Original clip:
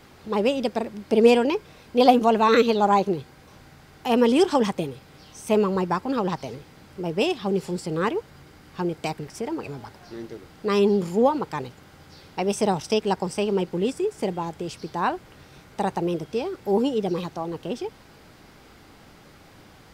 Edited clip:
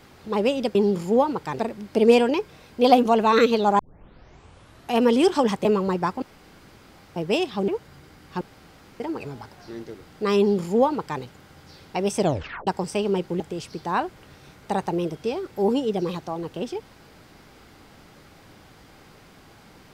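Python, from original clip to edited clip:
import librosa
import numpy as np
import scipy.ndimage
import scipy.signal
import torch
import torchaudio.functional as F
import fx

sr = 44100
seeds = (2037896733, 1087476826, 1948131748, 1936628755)

y = fx.edit(x, sr, fx.tape_start(start_s=2.95, length_s=1.18),
    fx.cut(start_s=4.81, length_s=0.72),
    fx.room_tone_fill(start_s=6.1, length_s=0.94),
    fx.cut(start_s=7.56, length_s=0.55),
    fx.room_tone_fill(start_s=8.84, length_s=0.59),
    fx.duplicate(start_s=10.81, length_s=0.84, to_s=0.75),
    fx.tape_stop(start_s=12.63, length_s=0.47),
    fx.cut(start_s=13.83, length_s=0.66), tone=tone)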